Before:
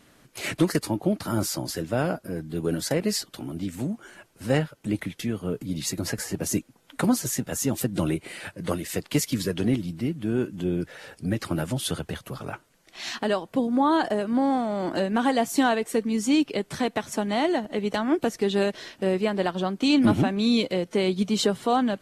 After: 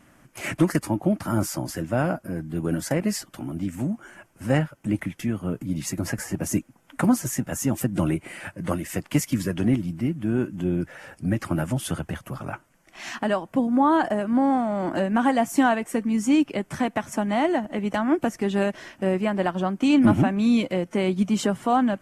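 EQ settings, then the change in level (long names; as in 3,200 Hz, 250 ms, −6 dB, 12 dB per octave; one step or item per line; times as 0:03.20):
parametric band 440 Hz −9.5 dB 0.34 octaves
parametric band 4,000 Hz −13 dB 0.66 octaves
high-shelf EQ 7,300 Hz −5.5 dB
+3.0 dB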